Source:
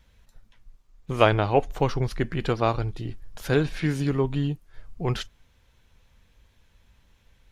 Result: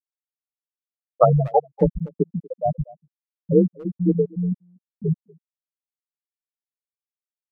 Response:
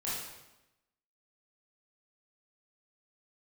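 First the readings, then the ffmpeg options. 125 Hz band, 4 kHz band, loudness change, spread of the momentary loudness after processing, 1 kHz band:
+2.0 dB, under -30 dB, +3.5 dB, 12 LU, +2.0 dB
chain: -filter_complex "[0:a]afreqshift=35,asplit=2[s0][s1];[s1]acrusher=bits=3:mode=log:mix=0:aa=0.000001,volume=0.473[s2];[s0][s2]amix=inputs=2:normalize=0,acrossover=split=790[s3][s4];[s3]aeval=exprs='val(0)*(1-0.5/2+0.5/2*cos(2*PI*2.2*n/s))':c=same[s5];[s4]aeval=exprs='val(0)*(1-0.5/2-0.5/2*cos(2*PI*2.2*n/s))':c=same[s6];[s5][s6]amix=inputs=2:normalize=0,afftfilt=real='re*gte(hypot(re,im),0.562)':imag='im*gte(hypot(re,im),0.562)':win_size=1024:overlap=0.75,asplit=2[s7][s8];[s8]adelay=240,highpass=300,lowpass=3400,asoftclip=type=hard:threshold=0.158,volume=0.0891[s9];[s7][s9]amix=inputs=2:normalize=0,volume=1.78"

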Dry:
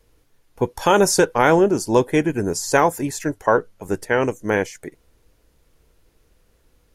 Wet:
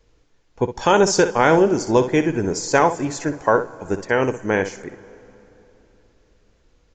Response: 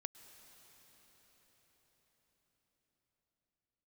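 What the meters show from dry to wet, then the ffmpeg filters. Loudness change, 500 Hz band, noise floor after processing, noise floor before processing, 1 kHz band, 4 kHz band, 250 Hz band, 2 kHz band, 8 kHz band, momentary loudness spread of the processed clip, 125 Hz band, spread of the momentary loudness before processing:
+0.5 dB, +0.5 dB, -60 dBFS, -62 dBFS, +0.5 dB, +0.5 dB, +0.5 dB, +0.5 dB, -1.5 dB, 12 LU, +0.5 dB, 11 LU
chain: -filter_complex "[0:a]asplit=2[s0][s1];[1:a]atrim=start_sample=2205,asetrate=83790,aresample=44100,adelay=62[s2];[s1][s2]afir=irnorm=-1:irlink=0,volume=0.891[s3];[s0][s3]amix=inputs=2:normalize=0,aresample=16000,aresample=44100"

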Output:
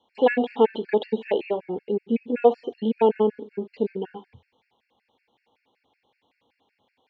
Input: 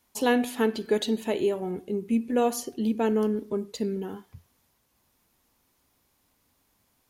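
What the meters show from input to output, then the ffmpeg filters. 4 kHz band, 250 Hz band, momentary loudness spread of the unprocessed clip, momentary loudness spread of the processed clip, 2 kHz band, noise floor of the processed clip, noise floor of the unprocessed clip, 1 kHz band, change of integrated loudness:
-3.5 dB, -0.5 dB, 8 LU, 9 LU, +1.0 dB, -76 dBFS, -71 dBFS, +4.5 dB, +3.0 dB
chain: -filter_complex "[0:a]acrossover=split=2900[s0][s1];[s1]acompressor=threshold=0.00251:ratio=4:attack=1:release=60[s2];[s0][s2]amix=inputs=2:normalize=0,highpass=140,equalizer=f=160:t=q:w=4:g=-7,equalizer=f=480:t=q:w=4:g=9,equalizer=f=830:t=q:w=4:g=10,equalizer=f=1300:t=q:w=4:g=-8,equalizer=f=2300:t=q:w=4:g=6,equalizer=f=3300:t=q:w=4:g=7,lowpass=f=3800:w=0.5412,lowpass=f=3800:w=1.3066,afftfilt=real='re*gt(sin(2*PI*5.3*pts/sr)*(1-2*mod(floor(b*sr/1024/1400),2)),0)':imag='im*gt(sin(2*PI*5.3*pts/sr)*(1-2*mod(floor(b*sr/1024/1400),2)),0)':win_size=1024:overlap=0.75,volume=1.41"

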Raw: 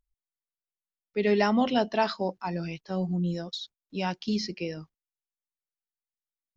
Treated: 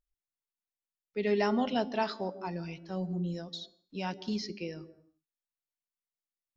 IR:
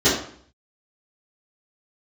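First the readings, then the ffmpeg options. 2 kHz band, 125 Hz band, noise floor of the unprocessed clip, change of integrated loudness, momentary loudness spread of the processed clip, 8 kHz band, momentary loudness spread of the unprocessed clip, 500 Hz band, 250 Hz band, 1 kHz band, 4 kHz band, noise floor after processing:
-5.5 dB, -5.5 dB, under -85 dBFS, -5.0 dB, 14 LU, no reading, 13 LU, -4.5 dB, -5.5 dB, -5.5 dB, -5.5 dB, under -85 dBFS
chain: -filter_complex "[0:a]bandreject=f=285.9:t=h:w=4,bandreject=f=571.8:t=h:w=4,bandreject=f=857.7:t=h:w=4,bandreject=f=1143.6:t=h:w=4,bandreject=f=1429.5:t=h:w=4,bandreject=f=1715.4:t=h:w=4,bandreject=f=2001.3:t=h:w=4,bandreject=f=2287.2:t=h:w=4,bandreject=f=2573.1:t=h:w=4,bandreject=f=2859:t=h:w=4,bandreject=f=3144.9:t=h:w=4,bandreject=f=3430.8:t=h:w=4,bandreject=f=3716.7:t=h:w=4,bandreject=f=4002.6:t=h:w=4,bandreject=f=4288.5:t=h:w=4,bandreject=f=4574.4:t=h:w=4,bandreject=f=4860.3:t=h:w=4,bandreject=f=5146.2:t=h:w=4,bandreject=f=5432.1:t=h:w=4,bandreject=f=5718:t=h:w=4,bandreject=f=6003.9:t=h:w=4,bandreject=f=6289.8:t=h:w=4,bandreject=f=6575.7:t=h:w=4,bandreject=f=6861.6:t=h:w=4,bandreject=f=7147.5:t=h:w=4,bandreject=f=7433.4:t=h:w=4,bandreject=f=7719.3:t=h:w=4,bandreject=f=8005.2:t=h:w=4,bandreject=f=8291.1:t=h:w=4,bandreject=f=8577:t=h:w=4,bandreject=f=8862.9:t=h:w=4,bandreject=f=9148.8:t=h:w=4,bandreject=f=9434.7:t=h:w=4,bandreject=f=9720.6:t=h:w=4,bandreject=f=10006.5:t=h:w=4,bandreject=f=10292.4:t=h:w=4,bandreject=f=10578.3:t=h:w=4,bandreject=f=10864.2:t=h:w=4,bandreject=f=11150.1:t=h:w=4,asplit=2[s0][s1];[s1]lowpass=1200[s2];[1:a]atrim=start_sample=2205,afade=t=out:st=0.31:d=0.01,atrim=end_sample=14112,adelay=136[s3];[s2][s3]afir=irnorm=-1:irlink=0,volume=0.0158[s4];[s0][s4]amix=inputs=2:normalize=0,volume=0.531"

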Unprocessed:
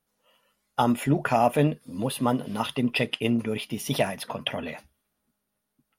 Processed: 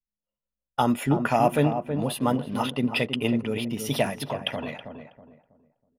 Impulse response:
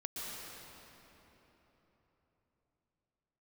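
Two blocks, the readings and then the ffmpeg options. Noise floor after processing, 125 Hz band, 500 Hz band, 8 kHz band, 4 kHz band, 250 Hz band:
under -85 dBFS, +0.5 dB, +0.5 dB, 0.0 dB, 0.0 dB, +0.5 dB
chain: -filter_complex "[0:a]anlmdn=0.1,asplit=2[s0][s1];[s1]adelay=323,lowpass=f=1100:p=1,volume=0.447,asplit=2[s2][s3];[s3]adelay=323,lowpass=f=1100:p=1,volume=0.33,asplit=2[s4][s5];[s5]adelay=323,lowpass=f=1100:p=1,volume=0.33,asplit=2[s6][s7];[s7]adelay=323,lowpass=f=1100:p=1,volume=0.33[s8];[s2][s4][s6][s8]amix=inputs=4:normalize=0[s9];[s0][s9]amix=inputs=2:normalize=0"

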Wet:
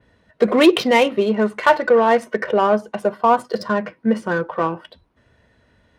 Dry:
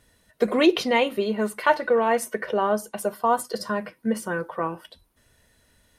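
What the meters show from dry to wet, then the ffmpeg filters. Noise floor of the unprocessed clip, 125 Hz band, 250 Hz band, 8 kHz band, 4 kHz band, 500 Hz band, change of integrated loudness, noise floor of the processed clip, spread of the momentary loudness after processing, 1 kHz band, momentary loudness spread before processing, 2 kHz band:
-64 dBFS, +7.0 dB, +6.5 dB, no reading, +5.0 dB, +6.5 dB, +6.0 dB, -61 dBFS, 9 LU, +6.0 dB, 10 LU, +5.5 dB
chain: -af "acontrast=86,adynamicequalizer=threshold=0.01:dfrequency=7700:dqfactor=0.85:tfrequency=7700:tqfactor=0.85:attack=5:release=100:ratio=0.375:range=2.5:mode=cutabove:tftype=bell,adynamicsmooth=sensitivity=2:basefreq=2700,highpass=58"

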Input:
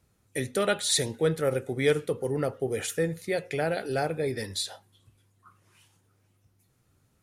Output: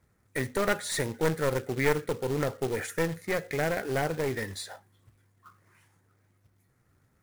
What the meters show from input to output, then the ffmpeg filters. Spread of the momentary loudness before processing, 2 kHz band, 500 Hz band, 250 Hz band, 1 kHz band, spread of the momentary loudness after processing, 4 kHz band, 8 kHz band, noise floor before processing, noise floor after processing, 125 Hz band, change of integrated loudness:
7 LU, +2.0 dB, -2.0 dB, -0.5 dB, +1.0 dB, 7 LU, -7.0 dB, -5.5 dB, -69 dBFS, -69 dBFS, 0.0 dB, -1.5 dB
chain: -af "highshelf=f=2400:t=q:w=3:g=-6,aeval=exprs='clip(val(0),-1,0.0316)':c=same,acrusher=bits=3:mode=log:mix=0:aa=0.000001"

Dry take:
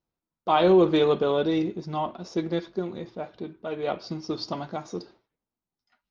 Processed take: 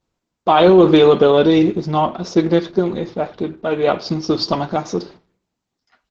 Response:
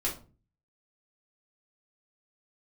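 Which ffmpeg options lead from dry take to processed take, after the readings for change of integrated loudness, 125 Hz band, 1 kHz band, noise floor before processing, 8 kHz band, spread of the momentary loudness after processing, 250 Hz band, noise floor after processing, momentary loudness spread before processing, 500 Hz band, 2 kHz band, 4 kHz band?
+10.0 dB, +11.5 dB, +9.5 dB, under -85 dBFS, no reading, 14 LU, +11.0 dB, -80 dBFS, 18 LU, +10.5 dB, +10.0 dB, +10.5 dB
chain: -filter_complex "[0:a]asplit=2[s0][s1];[s1]adelay=85,lowpass=f=1700:p=1,volume=0.0631,asplit=2[s2][s3];[s3]adelay=85,lowpass=f=1700:p=1,volume=0.35[s4];[s0][s2][s4]amix=inputs=3:normalize=0,asplit=2[s5][s6];[1:a]atrim=start_sample=2205,asetrate=31752,aresample=44100[s7];[s6][s7]afir=irnorm=-1:irlink=0,volume=0.0447[s8];[s5][s8]amix=inputs=2:normalize=0,alimiter=level_in=4.73:limit=0.891:release=50:level=0:latency=1,volume=0.891" -ar 48000 -c:a libopus -b:a 12k

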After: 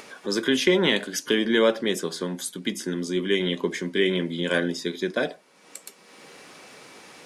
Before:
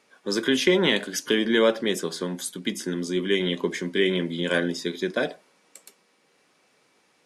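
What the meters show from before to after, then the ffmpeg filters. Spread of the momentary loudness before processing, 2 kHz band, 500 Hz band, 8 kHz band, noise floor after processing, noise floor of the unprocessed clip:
10 LU, 0.0 dB, 0.0 dB, 0.0 dB, -54 dBFS, -65 dBFS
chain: -af "acompressor=mode=upward:threshold=0.0282:ratio=2.5"

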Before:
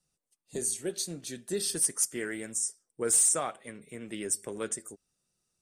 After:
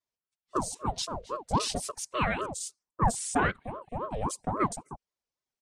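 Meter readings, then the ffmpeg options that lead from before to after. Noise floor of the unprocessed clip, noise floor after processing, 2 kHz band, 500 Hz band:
-85 dBFS, under -85 dBFS, +7.0 dB, +0.5 dB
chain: -af "afwtdn=0.00891,aecho=1:1:4.3:0.88,acontrast=38,alimiter=limit=0.158:level=0:latency=1:release=22,highpass=210,lowpass=4600,aeval=exprs='val(0)*sin(2*PI*540*n/s+540*0.6/3.7*sin(2*PI*3.7*n/s))':c=same,volume=1.41"

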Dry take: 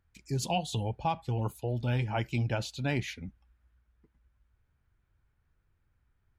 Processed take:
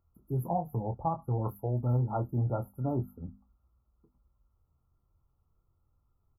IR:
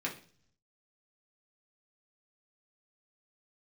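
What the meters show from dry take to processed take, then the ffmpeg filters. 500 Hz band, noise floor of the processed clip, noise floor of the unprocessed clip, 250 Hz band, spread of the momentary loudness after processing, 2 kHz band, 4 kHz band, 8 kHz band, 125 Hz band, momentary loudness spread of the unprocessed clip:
0.0 dB, -76 dBFS, -74 dBFS, 0.0 dB, 7 LU, under -25 dB, under -40 dB, under -15 dB, +1.0 dB, 5 LU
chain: -filter_complex "[0:a]afftfilt=real='re*(1-between(b*sr/4096,1400,11000))':imag='im*(1-between(b*sr/4096,1400,11000))':win_size=4096:overlap=0.75,bandreject=f=50:t=h:w=6,bandreject=f=100:t=h:w=6,bandreject=f=150:t=h:w=6,bandreject=f=200:t=h:w=6,bandreject=f=250:t=h:w=6,asplit=2[s0][s1];[s1]adelay=24,volume=0.398[s2];[s0][s2]amix=inputs=2:normalize=0"

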